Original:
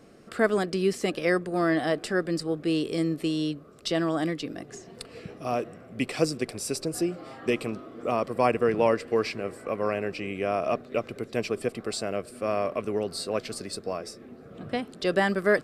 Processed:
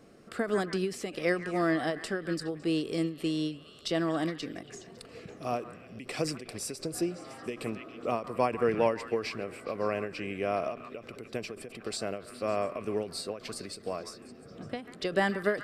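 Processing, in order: repeats whose band climbs or falls 139 ms, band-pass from 1.4 kHz, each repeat 0.7 oct, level -9 dB; endings held to a fixed fall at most 150 dB/s; trim -3 dB

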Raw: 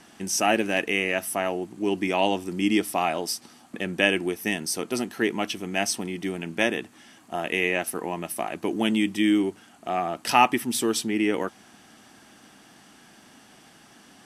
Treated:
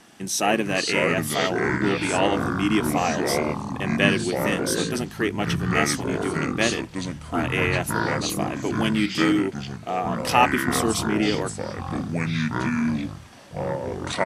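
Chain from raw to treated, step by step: harmony voices -7 st -10 dB; ever faster or slower copies 390 ms, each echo -5 st, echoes 3

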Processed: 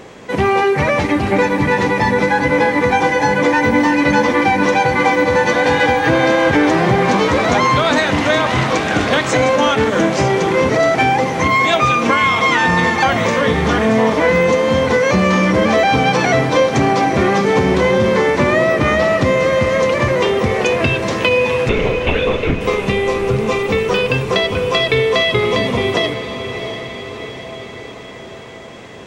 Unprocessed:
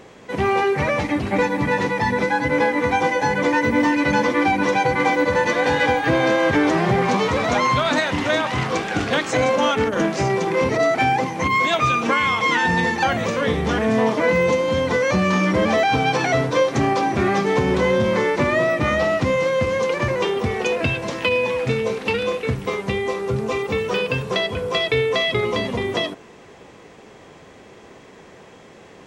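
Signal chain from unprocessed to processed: 21.69–22.61 s: LPC vocoder at 8 kHz whisper; echo that smears into a reverb 685 ms, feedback 60%, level -11 dB; in parallel at +2 dB: compression, threshold -20 dBFS, peak gain reduction 7.5 dB

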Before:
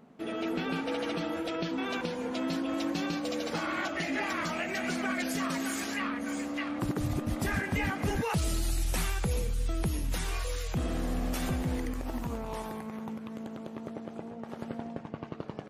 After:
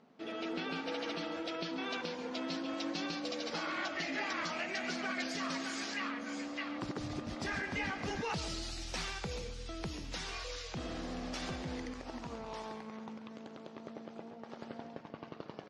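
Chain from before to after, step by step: four-pole ladder low-pass 6.2 kHz, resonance 40%; bass shelf 170 Hz -11 dB; delay 137 ms -13 dB; trim +3.5 dB

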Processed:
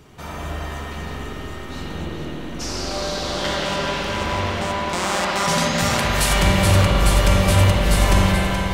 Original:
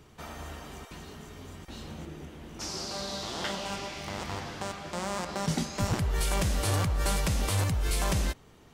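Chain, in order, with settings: 4.89–6.33 s: tilt shelf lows -6 dB, about 720 Hz; on a send: two-band feedback delay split 740 Hz, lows 193 ms, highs 426 ms, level -8.5 dB; on the sum: spring tank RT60 3.7 s, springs 42/53 ms, chirp 40 ms, DRR -5 dB; trim +6.5 dB

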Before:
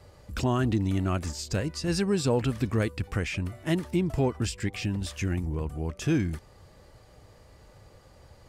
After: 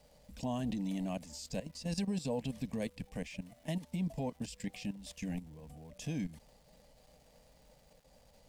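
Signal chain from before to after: level held to a coarse grid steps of 14 dB; static phaser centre 360 Hz, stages 6; crackle 580 per s -55 dBFS; trim -3 dB

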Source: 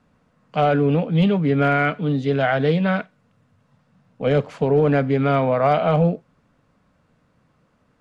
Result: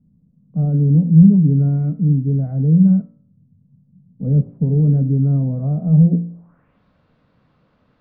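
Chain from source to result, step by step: low-pass sweep 180 Hz -> 4.1 kHz, 6.04–6.82 s; de-hum 57.06 Hz, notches 38; tape noise reduction on one side only decoder only; trim +3 dB

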